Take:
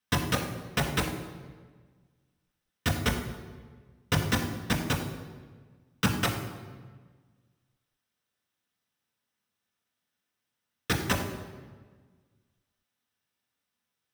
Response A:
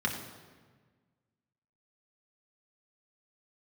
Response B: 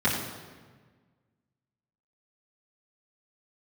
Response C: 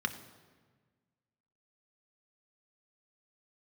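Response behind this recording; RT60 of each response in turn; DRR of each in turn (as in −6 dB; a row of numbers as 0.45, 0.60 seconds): A; 1.5, 1.5, 1.5 seconds; −0.5, −10.0, 7.0 decibels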